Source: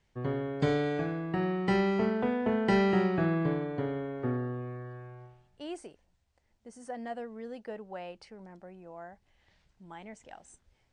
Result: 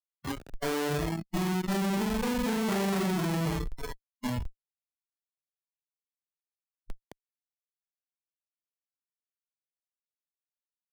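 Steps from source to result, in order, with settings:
comparator with hysteresis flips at −29 dBFS
noise reduction from a noise print of the clip's start 19 dB
multiband upward and downward compressor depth 40%
level +5.5 dB

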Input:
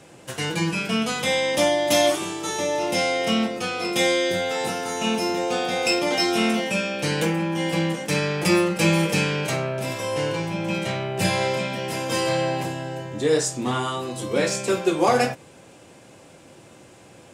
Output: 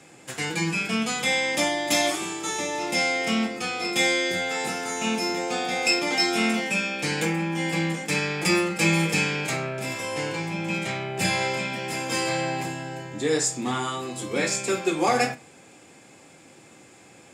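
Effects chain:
high-shelf EQ 8,500 Hz −5 dB
convolution reverb RT60 0.45 s, pre-delay 3 ms, DRR 15.5 dB

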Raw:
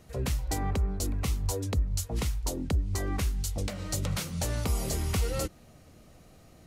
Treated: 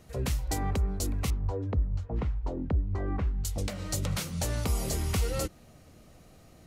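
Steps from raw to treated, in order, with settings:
0:01.30–0:03.45: low-pass filter 1,400 Hz 12 dB per octave

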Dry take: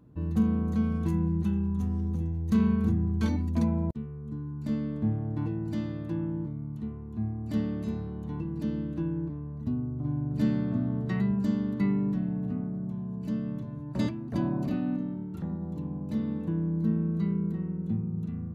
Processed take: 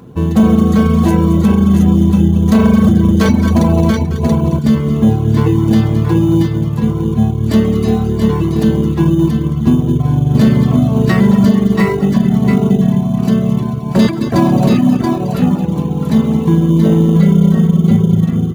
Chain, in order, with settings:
low-shelf EQ 130 Hz −8 dB
notch comb filter 300 Hz
on a send: repeating echo 218 ms, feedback 45%, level −10 dB
on the sum: soft clipping −21 dBFS, distortion −21 dB
bass and treble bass −5 dB, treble +1 dB
multi-tap delay 92/136/680 ms −19/−13/−5.5 dB
in parallel at −12 dB: sample-rate reduction 3,300 Hz, jitter 0%
on the sum: reverb reduction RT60 0.84 s
boost into a limiter +26 dB
level −1 dB

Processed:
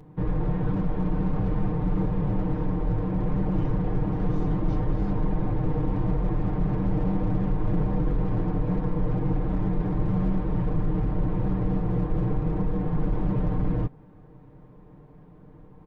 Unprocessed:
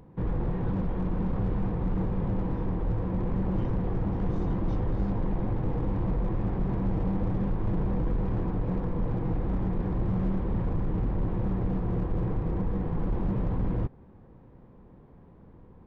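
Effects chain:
comb filter 6.6 ms, depth 76%
level +1 dB

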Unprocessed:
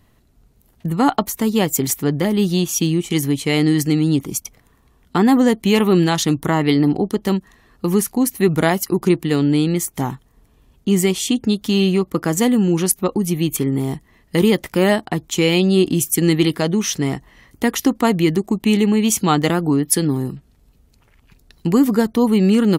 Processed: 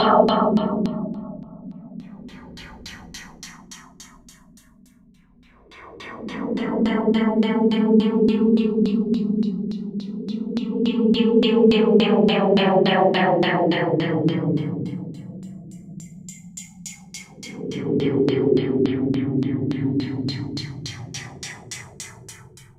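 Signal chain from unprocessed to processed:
mains-hum notches 60/120/180/240 Hz
extreme stretch with random phases 30×, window 0.05 s, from 0:01.19
auto-filter low-pass saw down 3.5 Hz 300–4,300 Hz
level −3.5 dB

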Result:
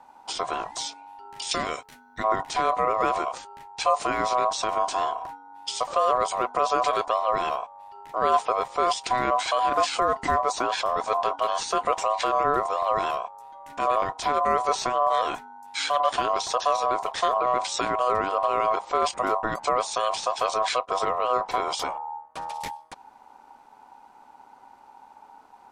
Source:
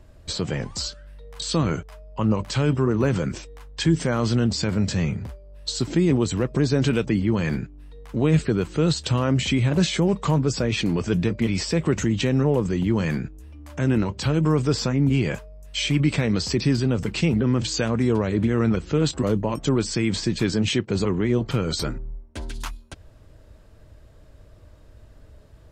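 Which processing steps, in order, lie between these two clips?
0:01.51–0:02.24: spectral tilt +2.5 dB per octave
ring modulation 870 Hz

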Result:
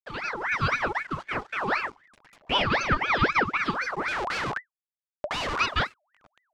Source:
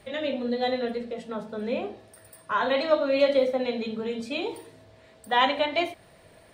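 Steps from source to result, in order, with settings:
hold until the input has moved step −43 dBFS
reverb reduction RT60 0.52 s
leveller curve on the samples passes 2
automatic gain control gain up to 6.5 dB
0:02.62–0:03.57: band-pass filter 350–5,500 Hz
0:04.08–0:05.60: comparator with hysteresis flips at −24 dBFS
high-frequency loss of the air 110 metres
ring modulator whose carrier an LFO sweeps 1,300 Hz, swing 55%, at 3.9 Hz
level −7.5 dB

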